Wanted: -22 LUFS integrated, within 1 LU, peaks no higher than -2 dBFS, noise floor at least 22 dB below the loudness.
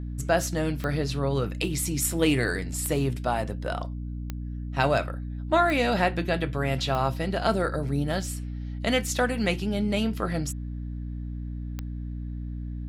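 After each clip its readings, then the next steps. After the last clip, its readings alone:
clicks found 6; hum 60 Hz; highest harmonic 300 Hz; hum level -31 dBFS; loudness -27.5 LUFS; peak level -8.5 dBFS; loudness target -22.0 LUFS
-> de-click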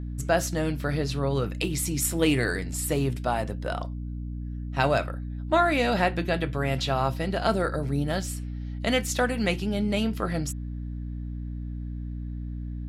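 clicks found 0; hum 60 Hz; highest harmonic 300 Hz; hum level -31 dBFS
-> hum notches 60/120/180/240/300 Hz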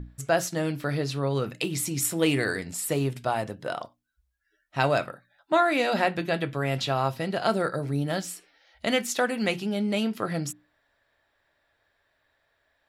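hum not found; loudness -27.0 LUFS; peak level -8.5 dBFS; loudness target -22.0 LUFS
-> trim +5 dB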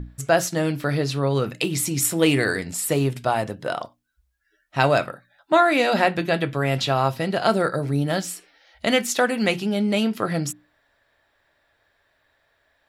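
loudness -22.5 LUFS; peak level -3.5 dBFS; noise floor -68 dBFS

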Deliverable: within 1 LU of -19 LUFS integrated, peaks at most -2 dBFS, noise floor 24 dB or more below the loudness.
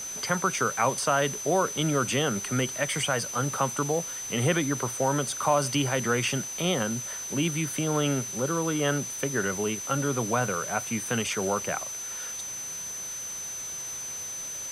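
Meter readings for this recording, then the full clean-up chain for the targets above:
steady tone 6.1 kHz; tone level -34 dBFS; noise floor -36 dBFS; noise floor target -52 dBFS; loudness -27.5 LUFS; peak level -11.0 dBFS; loudness target -19.0 LUFS
-> band-stop 6.1 kHz, Q 30; noise print and reduce 16 dB; trim +8.5 dB

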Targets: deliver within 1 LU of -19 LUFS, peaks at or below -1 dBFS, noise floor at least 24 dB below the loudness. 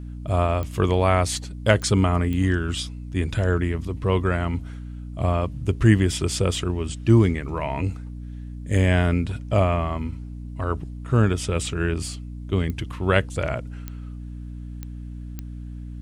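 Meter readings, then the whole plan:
clicks found 7; hum 60 Hz; highest harmonic 300 Hz; hum level -32 dBFS; loudness -23.5 LUFS; peak level -3.5 dBFS; loudness target -19.0 LUFS
-> de-click; hum notches 60/120/180/240/300 Hz; trim +4.5 dB; peak limiter -1 dBFS

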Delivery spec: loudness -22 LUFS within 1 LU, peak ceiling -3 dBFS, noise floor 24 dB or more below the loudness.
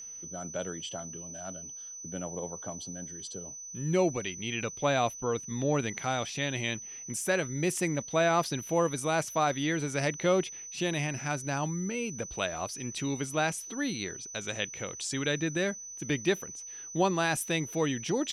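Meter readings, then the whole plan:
steady tone 6 kHz; tone level -41 dBFS; loudness -31.5 LUFS; peak level -15.0 dBFS; loudness target -22.0 LUFS
-> band-stop 6 kHz, Q 30; trim +9.5 dB

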